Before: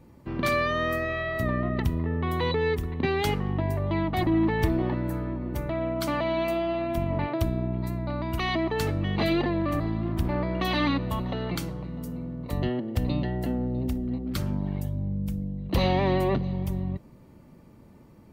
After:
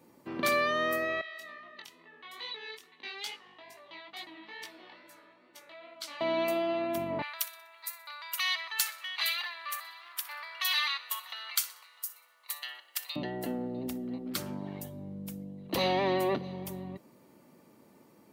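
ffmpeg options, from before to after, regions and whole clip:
-filter_complex "[0:a]asettb=1/sr,asplit=3[s0][s1][s2];[s0]atrim=end=1.214[s3];[s1]atrim=start=1.21:end=6.21,asetpts=PTS-STARTPTS,afade=t=in:d=0.004:c=qsin,afade=t=out:st=4.996:d=0.004:c=qsin,flanger=delay=17:depth=6:speed=2.3,bandpass=f=4200:t=q:w=0.96[s4];[s2]atrim=start=6.206[s5];[s3][s4]acrossfade=d=0.004:c1=hsin:c2=qsin[s6];[s6][s5]acrossfade=d=0.004:c1=qsin:c2=hsin,asettb=1/sr,asplit=3[s7][s8][s9];[s7]atrim=end=7.224[s10];[s8]atrim=start=7.22:end=13.16,asetpts=PTS-STARTPTS,afade=t=in:d=0.004:c=qsin,afade=t=out:st=5.936:d=0.004:c=qsin,highpass=f=1200:w=0.5412,highpass=f=1200:w=1.3066,highshelf=f=4300:g=9.5,aecho=1:1:62|124|186|248:0.126|0.0541|0.0233|0.01,atrim=end_sample=261954[s11];[s9]atrim=start=13.156[s12];[s10][s11]acrossfade=d=0.004:c1=hsin:c2=qsin[s13];[s13][s12]acrossfade=d=0.004:c1=qsin:c2=hsin,highpass=270,highshelf=f=5100:g=8,volume=0.75"

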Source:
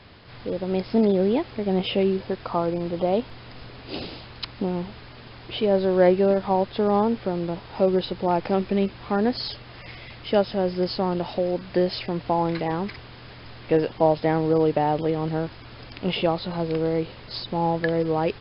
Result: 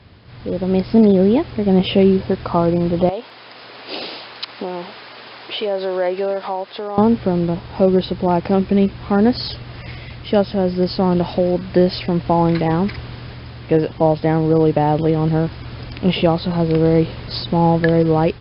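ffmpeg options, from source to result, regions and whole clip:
-filter_complex "[0:a]asettb=1/sr,asplit=3[s0][s1][s2];[s0]atrim=end=3.094[s3];[s1]atrim=start=3.09:end=6.98,asetpts=PTS-STARTPTS,afade=t=in:d=0.004:c=qsin,afade=t=out:st=3.886:d=0.004:c=qsin,highpass=560,acompressor=threshold=0.0224:ratio=2:attack=3.2:release=140:knee=1:detection=peak[s4];[s2]atrim=start=6.976[s5];[s3][s4]acrossfade=d=0.004:c1=hsin:c2=qsin[s6];[s6][s5]acrossfade=d=0.004:c1=qsin:c2=hsin,highpass=44,lowshelf=f=220:g=10,dynaudnorm=f=320:g=3:m=3.76,volume=0.794"

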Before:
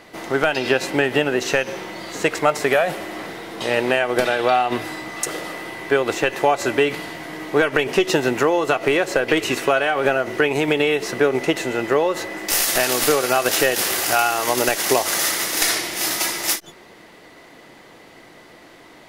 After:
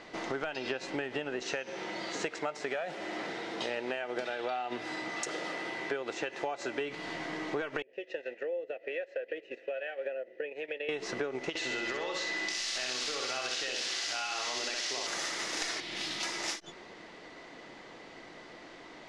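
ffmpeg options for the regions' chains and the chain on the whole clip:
-filter_complex "[0:a]asettb=1/sr,asplit=3[s0][s1][s2];[s0]atrim=end=1.434[s3];[s1]atrim=start=1.43:end=6.81,asetpts=PTS-STARTPTS,afade=t=in:d=0.004:c=qsin,afade=t=out:st=5.376:d=0.004:c=qsin,highpass=f=150:p=1,bandreject=f=1100:w=12[s4];[s2]atrim=start=6.806[s5];[s3][s4]acrossfade=d=0.004:c1=hsin:c2=qsin[s6];[s6][s5]acrossfade=d=0.004:c1=qsin:c2=hsin,asettb=1/sr,asplit=3[s7][s8][s9];[s7]atrim=end=7.824[s10];[s8]atrim=start=7.82:end=10.89,asetpts=PTS-STARTPTS,afade=t=in:d=0.004:c=qsin,afade=t=out:st=3.066:d=0.004:c=qsin,agate=range=0.355:threshold=0.0794:ratio=16:release=100:detection=peak,acrossover=split=640[s11][s12];[s11]aeval=exprs='val(0)*(1-0.5/2+0.5/2*cos(2*PI*1.2*n/s))':c=same[s13];[s12]aeval=exprs='val(0)*(1-0.5/2-0.5/2*cos(2*PI*1.2*n/s))':c=same[s14];[s13][s14]amix=inputs=2:normalize=0,asplit=3[s15][s16][s17];[s15]bandpass=f=530:t=q:w=8,volume=1[s18];[s16]bandpass=f=1840:t=q:w=8,volume=0.501[s19];[s17]bandpass=f=2480:t=q:w=8,volume=0.355[s20];[s18][s19][s20]amix=inputs=3:normalize=0[s21];[s9]atrim=start=10.886[s22];[s10][s21]acrossfade=d=0.004:c1=hsin:c2=qsin[s23];[s23][s22]acrossfade=d=0.004:c1=qsin:c2=hsin,asettb=1/sr,asplit=3[s24][s25][s26];[s24]atrim=end=11.494[s27];[s25]atrim=start=11.49:end=15.07,asetpts=PTS-STARTPTS,afade=t=in:d=0.004:c=qsin,afade=t=out:st=3.576:d=0.004:c=qsin,equalizer=f=4300:w=0.51:g=14.5,acompressor=threshold=0.112:ratio=5:attack=3.2:release=140:knee=1:detection=peak,aecho=1:1:63|126|189|252|315|378:0.668|0.307|0.141|0.0651|0.0299|0.0138,atrim=end_sample=157878[s28];[s26]atrim=start=15.066[s29];[s27][s28]acrossfade=d=0.004:c1=hsin:c2=qsin[s30];[s30][s29]acrossfade=d=0.004:c1=qsin:c2=hsin,asettb=1/sr,asplit=3[s31][s32][s33];[s31]atrim=end=15.804[s34];[s32]atrim=start=15.8:end=16.23,asetpts=PTS-STARTPTS,afade=t=in:d=0.004:c=qsin,afade=t=out:st=0.426:d=0.004:c=qsin,highshelf=f=4700:t=q:w=1.5:g=-8,acrossover=split=270|3000[s35][s36][s37];[s36]acompressor=threshold=0.0178:ratio=6:attack=3.2:release=140:knee=2.83:detection=peak[s38];[s35][s38][s37]amix=inputs=3:normalize=0[s39];[s33]atrim=start=16.226[s40];[s34][s39]acrossfade=d=0.004:c1=hsin:c2=qsin[s41];[s41][s40]acrossfade=d=0.004:c1=qsin:c2=hsin,lowpass=f=6800:w=0.5412,lowpass=f=6800:w=1.3066,equalizer=f=100:w=1.1:g=-5,acompressor=threshold=0.0355:ratio=5,volume=0.631"

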